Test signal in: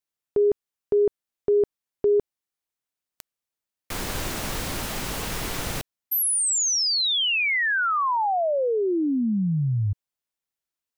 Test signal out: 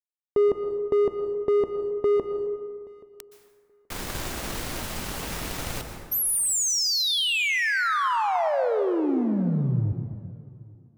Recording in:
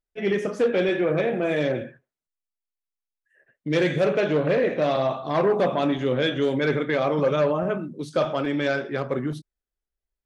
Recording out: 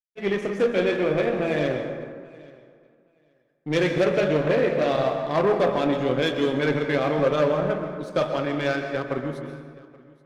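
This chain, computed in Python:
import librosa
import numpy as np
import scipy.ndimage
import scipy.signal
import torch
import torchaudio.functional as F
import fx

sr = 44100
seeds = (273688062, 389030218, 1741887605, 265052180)

y = fx.power_curve(x, sr, exponent=1.4)
y = fx.echo_feedback(y, sr, ms=827, feedback_pct=15, wet_db=-23.5)
y = fx.rev_plate(y, sr, seeds[0], rt60_s=1.7, hf_ratio=0.45, predelay_ms=110, drr_db=6.0)
y = y * 10.0 ** (1.5 / 20.0)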